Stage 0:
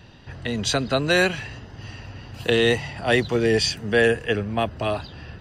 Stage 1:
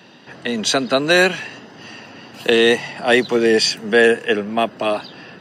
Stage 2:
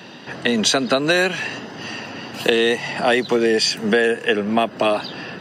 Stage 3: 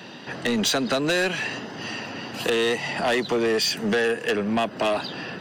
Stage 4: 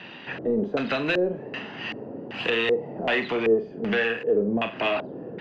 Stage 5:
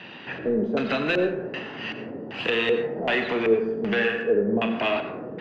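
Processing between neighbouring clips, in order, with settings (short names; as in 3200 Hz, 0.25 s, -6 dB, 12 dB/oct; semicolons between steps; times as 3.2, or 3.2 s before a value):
HPF 190 Hz 24 dB/oct; gain +5.5 dB
compressor 6:1, threshold -21 dBFS, peak gain reduction 12 dB; gain +6.5 dB
soft clip -16 dBFS, distortion -12 dB; gain -1.5 dB
flutter echo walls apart 7.6 m, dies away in 0.3 s; LFO low-pass square 1.3 Hz 460–2600 Hz; gain -4 dB
plate-style reverb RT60 0.93 s, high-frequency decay 0.35×, pre-delay 75 ms, DRR 7 dB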